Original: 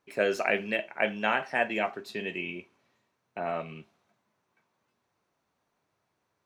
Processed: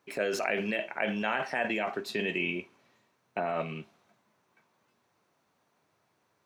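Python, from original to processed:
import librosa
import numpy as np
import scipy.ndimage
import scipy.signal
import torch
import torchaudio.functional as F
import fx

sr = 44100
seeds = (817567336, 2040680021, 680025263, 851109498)

p1 = scipy.signal.sosfilt(scipy.signal.butter(2, 94.0, 'highpass', fs=sr, output='sos'), x)
p2 = fx.over_compress(p1, sr, threshold_db=-34.0, ratio=-0.5)
p3 = p1 + F.gain(torch.from_numpy(p2), 2.0).numpy()
y = F.gain(torch.from_numpy(p3), -5.0).numpy()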